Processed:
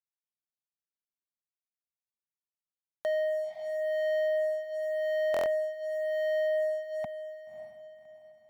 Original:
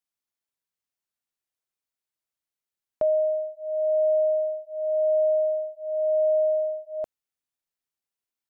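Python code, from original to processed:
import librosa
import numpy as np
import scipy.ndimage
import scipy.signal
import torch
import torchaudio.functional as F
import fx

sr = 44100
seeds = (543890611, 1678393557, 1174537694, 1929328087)

p1 = fx.wiener(x, sr, points=9)
p2 = fx.env_lowpass(p1, sr, base_hz=520.0, full_db=-24.5)
p3 = scipy.signal.sosfilt(scipy.signal.butter(4, 97.0, 'highpass', fs=sr, output='sos'), p2)
p4 = fx.env_lowpass(p3, sr, base_hz=670.0, full_db=-20.0)
p5 = scipy.signal.sosfilt(scipy.signal.ellip(3, 1.0, 40, [230.0, 720.0], 'bandstop', fs=sr, output='sos'), p4)
p6 = fx.leveller(p5, sr, passes=3)
p7 = p6 + fx.echo_diffused(p6, sr, ms=581, feedback_pct=41, wet_db=-12, dry=0)
p8 = fx.buffer_glitch(p7, sr, at_s=(2.91, 5.32), block=1024, repeats=5)
y = p8 * 10.0 ** (-1.5 / 20.0)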